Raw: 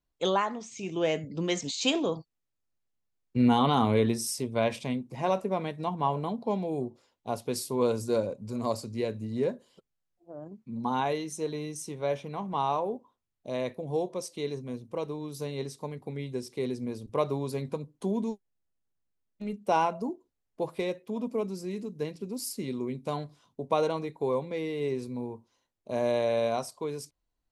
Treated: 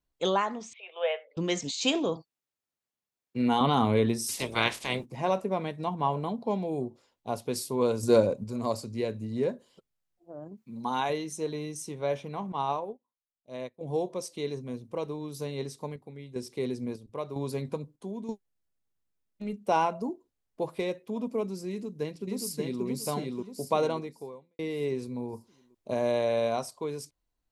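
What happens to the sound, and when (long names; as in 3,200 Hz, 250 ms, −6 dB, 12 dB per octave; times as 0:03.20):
0:00.73–0:01.37: Chebyshev band-pass filter 490–3,600 Hz, order 5
0:02.16–0:03.61: high-pass filter 300 Hz 6 dB per octave
0:04.28–0:05.04: ceiling on every frequency bin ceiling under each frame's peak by 25 dB
0:08.03–0:08.44: clip gain +6.5 dB
0:10.57–0:11.10: spectral tilt +2 dB per octave
0:12.52–0:13.81: expander for the loud parts 2.5 to 1, over −43 dBFS
0:15.36–0:18.29: square-wave tremolo 1 Hz, depth 60%, duty 60%
0:21.69–0:22.84: delay throw 580 ms, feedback 40%, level −2 dB
0:23.93–0:24.59: fade out quadratic
0:25.33–0:25.94: clip gain +3.5 dB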